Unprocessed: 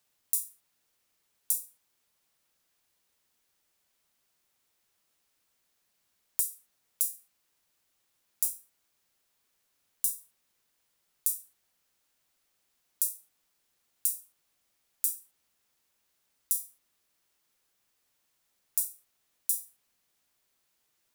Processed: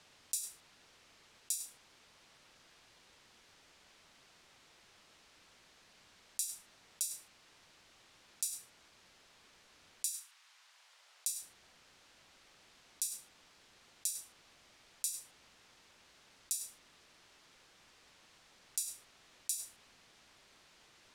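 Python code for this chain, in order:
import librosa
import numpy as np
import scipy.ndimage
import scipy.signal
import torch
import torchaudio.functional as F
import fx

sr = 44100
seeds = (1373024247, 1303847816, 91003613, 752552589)

p1 = scipy.signal.sosfilt(scipy.signal.butter(2, 5000.0, 'lowpass', fs=sr, output='sos'), x)
p2 = fx.over_compress(p1, sr, threshold_db=-58.0, ratio=-0.5)
p3 = p1 + F.gain(torch.from_numpy(p2), -2.0).numpy()
p4 = fx.highpass(p3, sr, hz=fx.line((10.09, 1100.0), (11.4, 480.0)), slope=24, at=(10.09, 11.4), fade=0.02)
y = F.gain(torch.from_numpy(p4), 7.0).numpy()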